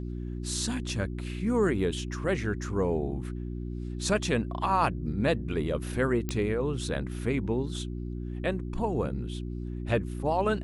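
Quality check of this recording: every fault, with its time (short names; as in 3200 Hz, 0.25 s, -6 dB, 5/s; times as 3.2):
hum 60 Hz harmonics 6 -35 dBFS
6.29 pop -17 dBFS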